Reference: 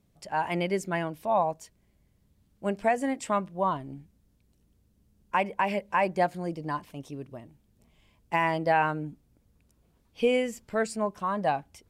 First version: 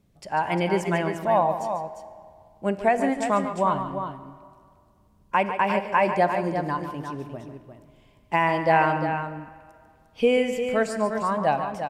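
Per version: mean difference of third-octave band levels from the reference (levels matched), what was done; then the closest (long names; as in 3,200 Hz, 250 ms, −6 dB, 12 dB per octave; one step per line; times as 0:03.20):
6.0 dB: high-shelf EQ 4,600 Hz −5 dB
on a send: multi-tap delay 144/351 ms −10.5/−8 dB
on the sum: comb and all-pass reverb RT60 2.1 s, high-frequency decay 0.75×, pre-delay 5 ms, DRR 13 dB
level +4 dB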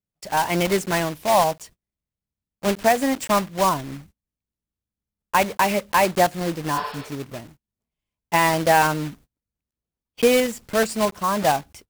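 8.0 dB: one scale factor per block 3 bits
noise gate −53 dBFS, range −31 dB
healed spectral selection 0:06.77–0:07.07, 400–5,500 Hz both
level +7 dB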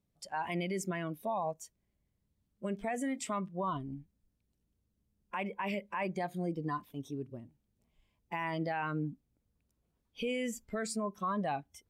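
3.5 dB: noise reduction from a noise print of the clip's start 13 dB
dynamic equaliser 550 Hz, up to −5 dB, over −37 dBFS, Q 1.8
brickwall limiter −26.5 dBFS, peak gain reduction 11.5 dB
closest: third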